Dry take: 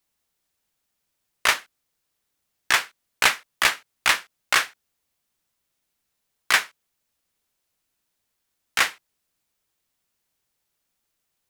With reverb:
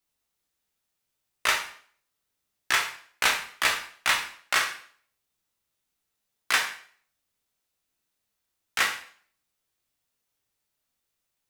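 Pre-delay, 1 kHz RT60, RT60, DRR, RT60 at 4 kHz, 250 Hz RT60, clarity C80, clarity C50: 7 ms, 0.50 s, 0.50 s, 2.0 dB, 0.50 s, 0.50 s, 12.0 dB, 8.0 dB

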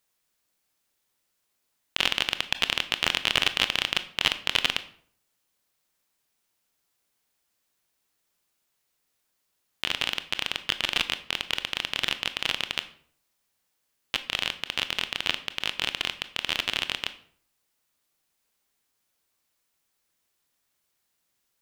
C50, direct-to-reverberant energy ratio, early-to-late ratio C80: 15.0 dB, 11.0 dB, 18.0 dB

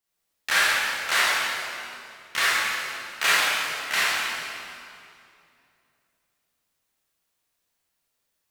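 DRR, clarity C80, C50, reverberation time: -10.0 dB, -2.5 dB, -5.0 dB, 2.5 s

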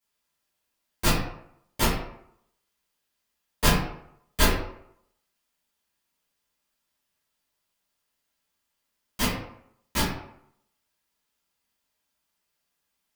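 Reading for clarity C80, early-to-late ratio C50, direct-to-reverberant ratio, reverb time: 6.0 dB, 2.0 dB, -13.0 dB, 0.75 s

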